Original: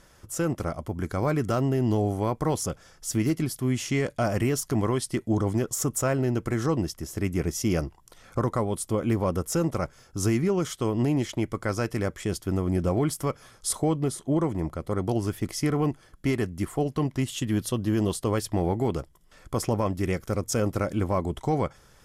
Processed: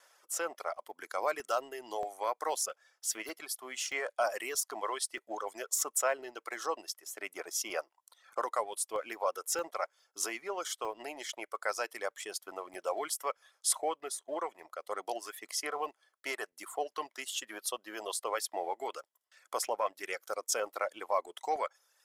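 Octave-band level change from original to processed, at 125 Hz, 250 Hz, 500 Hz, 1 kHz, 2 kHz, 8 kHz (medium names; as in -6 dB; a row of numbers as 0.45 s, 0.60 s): under -40 dB, -25.0 dB, -8.5 dB, -2.0 dB, -2.0 dB, -1.5 dB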